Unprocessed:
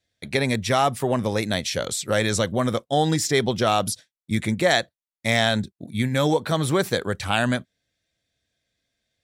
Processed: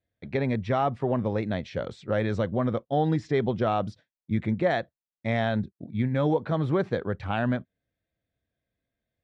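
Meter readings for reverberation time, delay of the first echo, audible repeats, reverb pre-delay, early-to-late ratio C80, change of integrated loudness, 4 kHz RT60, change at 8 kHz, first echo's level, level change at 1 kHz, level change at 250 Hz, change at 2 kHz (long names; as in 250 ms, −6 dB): no reverb audible, no echo audible, no echo audible, no reverb audible, no reverb audible, −4.5 dB, no reverb audible, below −30 dB, no echo audible, −5.0 dB, −2.5 dB, −9.5 dB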